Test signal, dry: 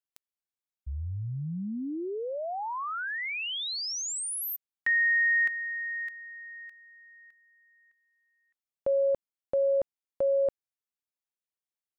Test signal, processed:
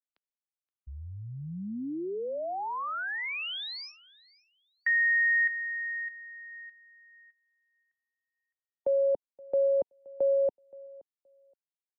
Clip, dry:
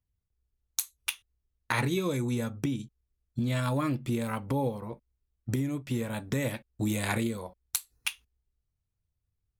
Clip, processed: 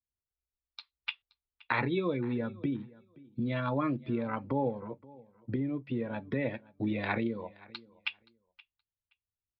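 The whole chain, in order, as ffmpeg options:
ffmpeg -i in.wav -filter_complex "[0:a]afftdn=noise_reduction=12:noise_floor=-39,acrossover=split=200[link_01][link_02];[link_01]acontrast=37[link_03];[link_03][link_02]amix=inputs=2:normalize=0,acrossover=split=230 3800:gain=0.224 1 0.251[link_04][link_05][link_06];[link_04][link_05][link_06]amix=inputs=3:normalize=0,aecho=1:1:523|1046:0.075|0.0135,aresample=11025,aresample=44100" out.wav

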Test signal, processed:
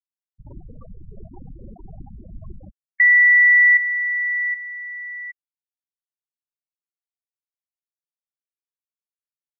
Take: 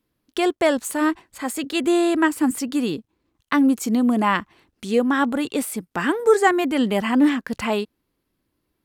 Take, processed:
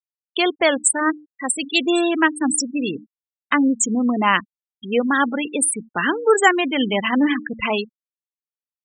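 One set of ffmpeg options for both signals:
ffmpeg -i in.wav -af "bandreject=frequency=75.24:width_type=h:width=4,bandreject=frequency=150.48:width_type=h:width=4,bandreject=frequency=225.72:width_type=h:width=4,bandreject=frequency=300.96:width_type=h:width=4,afftfilt=real='re*gte(hypot(re,im),0.0708)':imag='im*gte(hypot(re,im),0.0708)':win_size=1024:overlap=0.75,crystalizer=i=7:c=0,volume=-1dB" out.wav

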